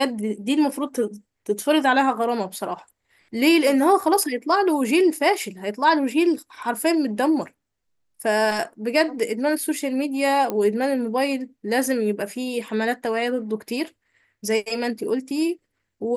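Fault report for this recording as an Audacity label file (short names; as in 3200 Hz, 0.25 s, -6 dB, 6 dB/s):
10.500000	10.500000	pop -12 dBFS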